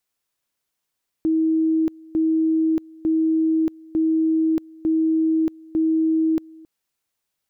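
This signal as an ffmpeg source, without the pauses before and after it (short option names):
-f lavfi -i "aevalsrc='pow(10,(-16-24.5*gte(mod(t,0.9),0.63))/20)*sin(2*PI*320*t)':d=5.4:s=44100"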